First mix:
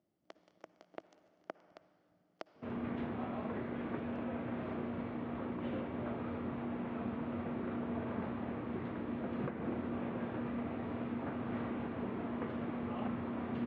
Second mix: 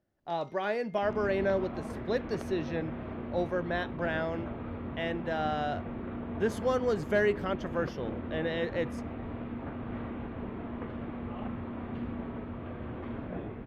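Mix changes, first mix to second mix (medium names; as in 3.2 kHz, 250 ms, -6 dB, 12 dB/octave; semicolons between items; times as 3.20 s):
speech: unmuted; second sound: entry -1.60 s; master: remove high-pass 130 Hz 12 dB/octave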